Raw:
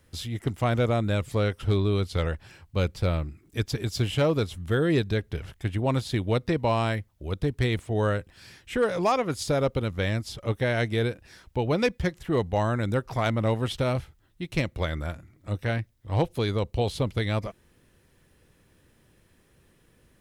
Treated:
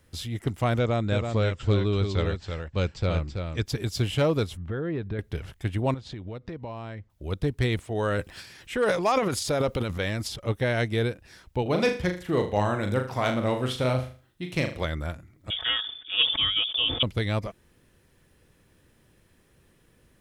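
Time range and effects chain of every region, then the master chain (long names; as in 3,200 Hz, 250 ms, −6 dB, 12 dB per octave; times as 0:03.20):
0:00.79–0:03.63: elliptic low-pass filter 7,700 Hz + single-tap delay 330 ms −6 dB
0:04.57–0:05.19: low-pass filter 1,900 Hz + downward compressor 4 to 1, threshold −27 dBFS
0:05.94–0:07.10: low-pass filter 7,400 Hz 24 dB per octave + high-shelf EQ 3,300 Hz −9.5 dB + downward compressor 5 to 1, threshold −34 dBFS
0:07.84–0:10.36: low-shelf EQ 270 Hz −6.5 dB + transient designer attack +1 dB, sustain +11 dB
0:11.62–0:14.85: high-pass filter 120 Hz 6 dB per octave + flutter between parallel walls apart 6.7 metres, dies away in 0.38 s
0:15.50–0:17.03: comb filter 5 ms, depth 77% + voice inversion scrambler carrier 3,500 Hz + level that may fall only so fast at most 75 dB per second
whole clip: no processing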